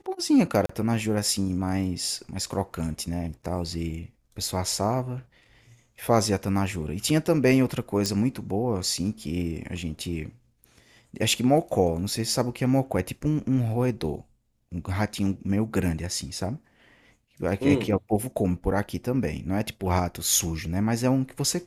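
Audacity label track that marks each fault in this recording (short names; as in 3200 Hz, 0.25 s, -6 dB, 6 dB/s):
0.660000	0.690000	gap 34 ms
8.060000	8.060000	pop -12 dBFS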